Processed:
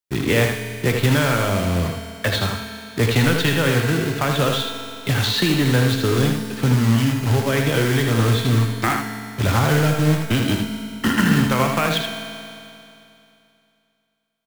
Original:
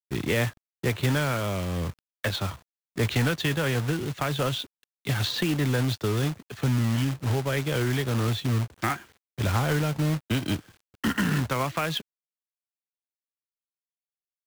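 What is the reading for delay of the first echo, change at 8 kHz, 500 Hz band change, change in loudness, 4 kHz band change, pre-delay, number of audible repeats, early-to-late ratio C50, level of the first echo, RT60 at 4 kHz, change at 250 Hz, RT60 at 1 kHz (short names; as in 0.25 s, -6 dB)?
79 ms, +8.5 dB, +8.5 dB, +8.0 dB, +8.5 dB, 4 ms, 1, 2.5 dB, -5.5 dB, 2.7 s, +8.5 dB, 2.7 s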